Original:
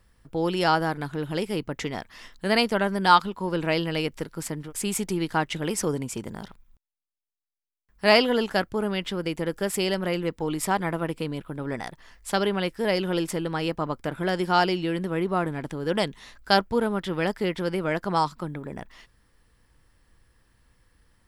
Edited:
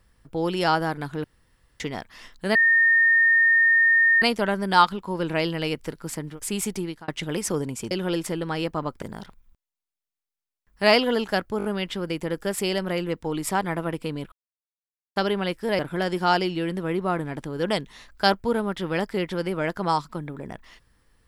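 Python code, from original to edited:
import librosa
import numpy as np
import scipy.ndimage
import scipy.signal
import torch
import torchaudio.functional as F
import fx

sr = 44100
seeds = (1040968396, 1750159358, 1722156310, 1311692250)

y = fx.edit(x, sr, fx.room_tone_fill(start_s=1.24, length_s=0.56),
    fx.insert_tone(at_s=2.55, length_s=1.67, hz=1830.0, db=-14.5),
    fx.fade_out_span(start_s=5.07, length_s=0.34),
    fx.stutter(start_s=8.8, slice_s=0.02, count=4),
    fx.silence(start_s=11.48, length_s=0.84),
    fx.move(start_s=12.95, length_s=1.11, to_s=6.24), tone=tone)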